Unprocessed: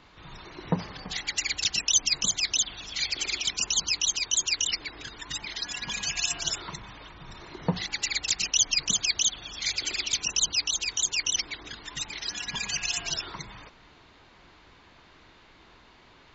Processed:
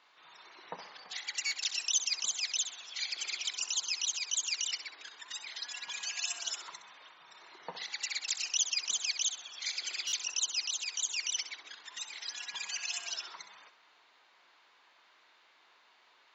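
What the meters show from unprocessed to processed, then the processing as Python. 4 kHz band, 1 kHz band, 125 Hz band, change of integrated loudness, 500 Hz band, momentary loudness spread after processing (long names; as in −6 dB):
−7.0 dB, −8.5 dB, below −30 dB, −7.0 dB, −14.0 dB, 16 LU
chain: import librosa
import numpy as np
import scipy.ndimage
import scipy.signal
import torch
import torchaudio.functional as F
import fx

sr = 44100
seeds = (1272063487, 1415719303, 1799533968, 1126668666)

p1 = scipy.signal.sosfilt(scipy.signal.butter(2, 710.0, 'highpass', fs=sr, output='sos'), x)
p2 = p1 + fx.echo_feedback(p1, sr, ms=65, feedback_pct=38, wet_db=-11, dry=0)
p3 = fx.buffer_glitch(p2, sr, at_s=(1.46, 10.07), block=256, repeats=8)
y = p3 * librosa.db_to_amplitude(-7.5)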